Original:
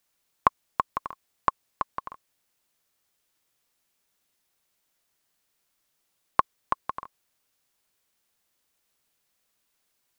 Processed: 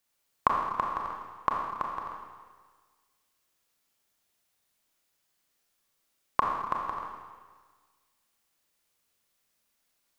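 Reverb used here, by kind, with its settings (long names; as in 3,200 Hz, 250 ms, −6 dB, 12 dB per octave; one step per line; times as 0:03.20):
four-comb reverb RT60 1.5 s, combs from 27 ms, DRR −0.5 dB
level −4 dB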